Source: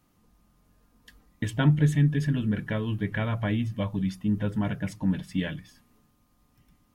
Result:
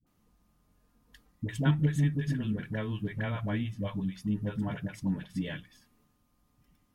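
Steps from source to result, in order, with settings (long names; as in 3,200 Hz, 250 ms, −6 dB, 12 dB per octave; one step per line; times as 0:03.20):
all-pass dispersion highs, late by 67 ms, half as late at 530 Hz
level −5 dB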